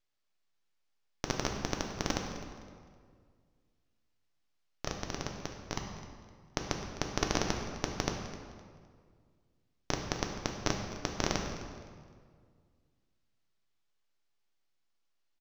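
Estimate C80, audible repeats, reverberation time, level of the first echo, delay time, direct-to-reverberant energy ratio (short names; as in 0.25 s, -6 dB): 5.5 dB, 2, 1.9 s, -16.0 dB, 0.257 s, 2.0 dB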